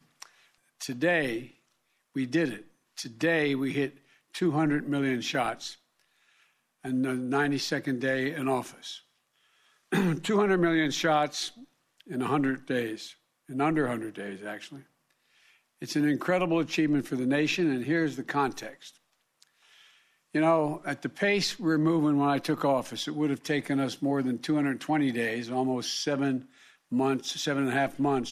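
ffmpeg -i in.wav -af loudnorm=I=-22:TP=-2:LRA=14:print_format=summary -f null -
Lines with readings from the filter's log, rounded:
Input Integrated:    -28.4 LUFS
Input True Peak:     -12.5 dBTP
Input LRA:             3.9 LU
Input Threshold:     -39.5 LUFS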